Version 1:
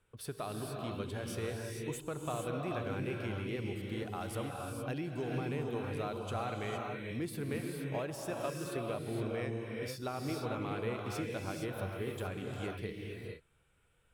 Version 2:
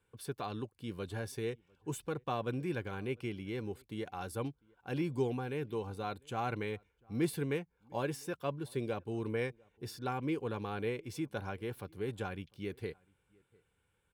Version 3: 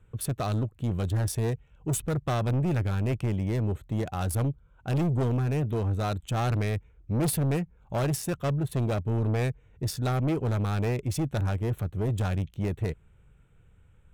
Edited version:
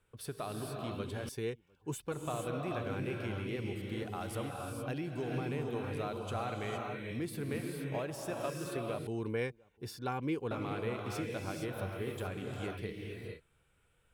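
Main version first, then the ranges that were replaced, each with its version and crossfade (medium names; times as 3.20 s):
1
1.29–2.12 s: from 2
9.07–10.51 s: from 2
not used: 3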